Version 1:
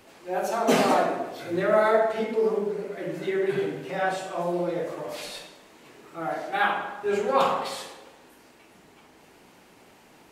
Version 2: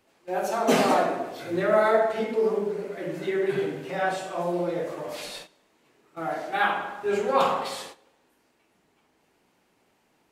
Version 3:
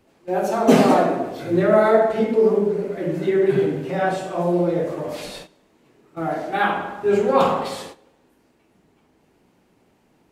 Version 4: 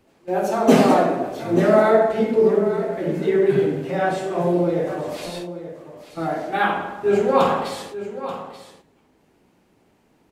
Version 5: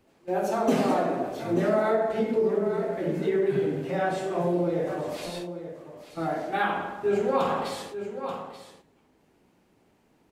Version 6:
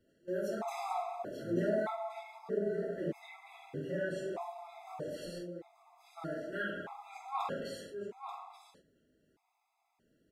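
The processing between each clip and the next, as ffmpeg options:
ffmpeg -i in.wav -af "agate=range=-13dB:threshold=-41dB:ratio=16:detection=peak" out.wav
ffmpeg -i in.wav -af "lowshelf=frequency=480:gain=11.5,volume=1dB" out.wav
ffmpeg -i in.wav -af "aecho=1:1:884:0.237" out.wav
ffmpeg -i in.wav -af "acompressor=threshold=-18dB:ratio=2.5,volume=-4dB" out.wav
ffmpeg -i in.wav -af "afftfilt=real='re*gt(sin(2*PI*0.8*pts/sr)*(1-2*mod(floor(b*sr/1024/670),2)),0)':imag='im*gt(sin(2*PI*0.8*pts/sr)*(1-2*mod(floor(b*sr/1024/670),2)),0)':win_size=1024:overlap=0.75,volume=-7.5dB" out.wav

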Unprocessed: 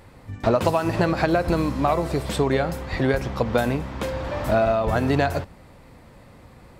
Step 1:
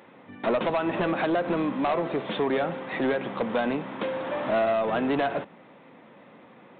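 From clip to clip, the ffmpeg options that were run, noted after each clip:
ffmpeg -i in.wav -af "highpass=frequency=190:width=0.5412,highpass=frequency=190:width=1.3066,aresample=8000,asoftclip=type=tanh:threshold=-19.5dB,aresample=44100" out.wav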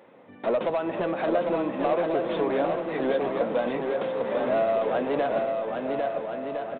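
ffmpeg -i in.wav -filter_complex "[0:a]equalizer=frequency=530:width_type=o:width=1.1:gain=8,asplit=2[link_01][link_02];[link_02]aecho=0:1:800|1360|1752|2026|2218:0.631|0.398|0.251|0.158|0.1[link_03];[link_01][link_03]amix=inputs=2:normalize=0,volume=-6dB" out.wav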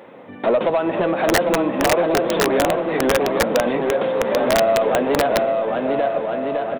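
ffmpeg -i in.wav -filter_complex "[0:a]asplit=2[link_01][link_02];[link_02]acompressor=threshold=-33dB:ratio=10,volume=-1dB[link_03];[link_01][link_03]amix=inputs=2:normalize=0,aeval=exprs='(mod(5.62*val(0)+1,2)-1)/5.62':channel_layout=same,volume=5.5dB" out.wav

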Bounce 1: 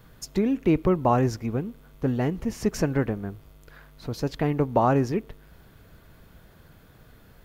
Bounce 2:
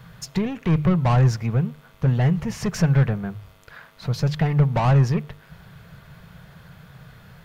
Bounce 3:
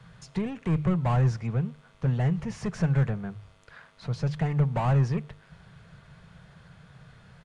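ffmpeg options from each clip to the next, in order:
ffmpeg -i in.wav -filter_complex "[0:a]asplit=2[link_01][link_02];[link_02]highpass=frequency=720:poles=1,volume=22dB,asoftclip=type=tanh:threshold=-8.5dB[link_03];[link_01][link_03]amix=inputs=2:normalize=0,lowpass=frequency=3800:poles=1,volume=-6dB,lowshelf=frequency=210:width_type=q:width=3:gain=10.5,bandreject=frequency=50:width_type=h:width=6,bandreject=frequency=100:width_type=h:width=6,bandreject=frequency=150:width_type=h:width=6,volume=-6.5dB" out.wav
ffmpeg -i in.wav -filter_complex "[0:a]acrossover=split=110|1900[link_01][link_02][link_03];[link_03]asoftclip=type=hard:threshold=-39.5dB[link_04];[link_01][link_02][link_04]amix=inputs=3:normalize=0,aresample=22050,aresample=44100,volume=-6dB" out.wav

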